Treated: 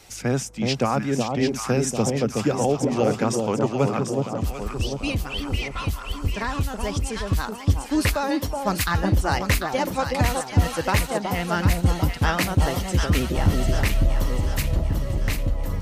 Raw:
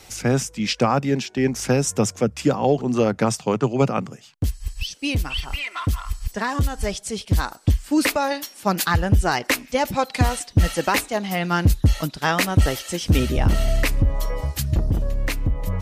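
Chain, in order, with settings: echo with dull and thin repeats by turns 0.372 s, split 1000 Hz, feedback 71%, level -3 dB; vibrato 15 Hz 38 cents; gain -3.5 dB

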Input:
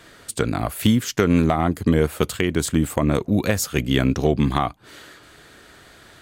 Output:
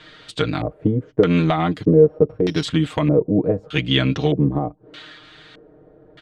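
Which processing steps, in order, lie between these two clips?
1.83–2.63 sample sorter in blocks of 8 samples; comb 6.5 ms, depth 80%; LFO low-pass square 0.81 Hz 490–3600 Hz; gain -2 dB

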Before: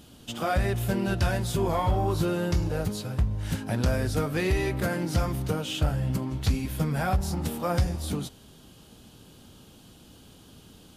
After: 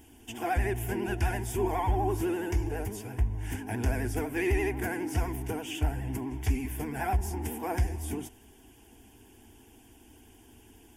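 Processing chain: vibrato 12 Hz 97 cents; fixed phaser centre 830 Hz, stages 8

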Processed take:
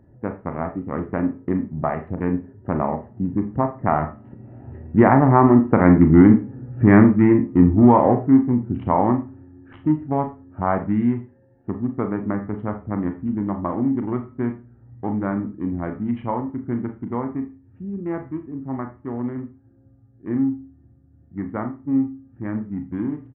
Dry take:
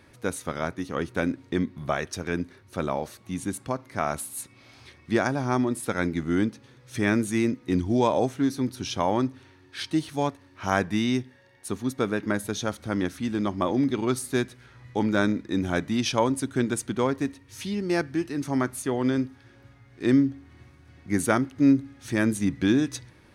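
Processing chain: Wiener smoothing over 41 samples; Doppler pass-by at 6.01, 10 m/s, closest 9.6 m; low shelf 320 Hz -5 dB; comb 1 ms, depth 41%; de-hum 428.7 Hz, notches 3; in parallel at +2 dB: compressor, threshold -44 dBFS, peak gain reduction 20 dB; on the sum: Gaussian blur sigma 5.7 samples; on a send at -6 dB: reverb RT60 0.30 s, pre-delay 26 ms; on the sum: maximiser +17.5 dB; gain -1 dB

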